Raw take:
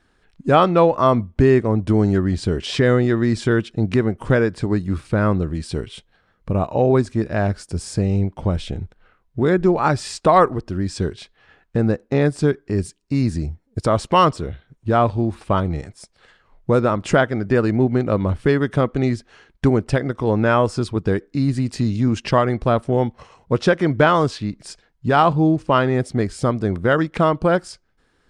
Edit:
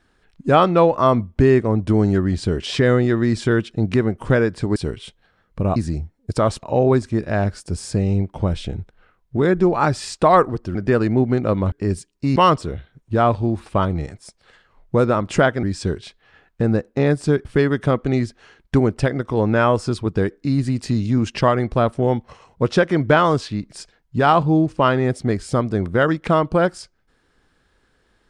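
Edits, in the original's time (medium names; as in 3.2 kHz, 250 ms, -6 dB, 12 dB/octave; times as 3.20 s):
4.76–5.66 s: delete
10.78–12.60 s: swap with 17.38–18.35 s
13.24–14.11 s: move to 6.66 s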